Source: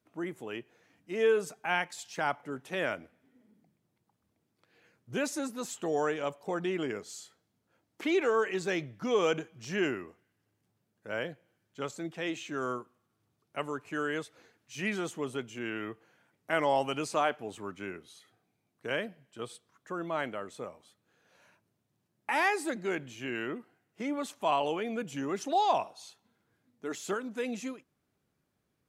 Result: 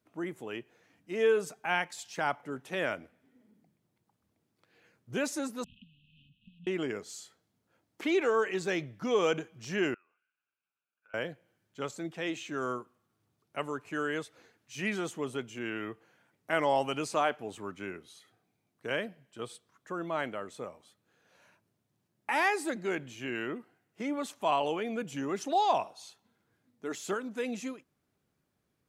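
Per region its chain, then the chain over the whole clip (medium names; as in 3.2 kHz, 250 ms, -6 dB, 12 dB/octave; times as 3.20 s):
5.64–6.67 s: CVSD coder 16 kbps + compression 10:1, threshold -44 dBFS + brick-wall FIR band-stop 260–2500 Hz
9.94–11.14 s: compression 4:1, threshold -50 dBFS + two resonant band-passes 1.9 kHz, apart 0.76 oct
whole clip: none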